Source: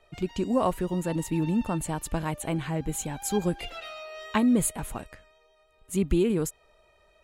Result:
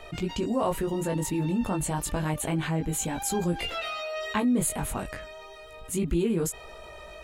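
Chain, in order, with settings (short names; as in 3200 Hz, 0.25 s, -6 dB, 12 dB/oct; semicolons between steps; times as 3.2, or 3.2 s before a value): chorus 0.3 Hz, delay 17.5 ms, depth 3.3 ms; fast leveller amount 50%; gain -2 dB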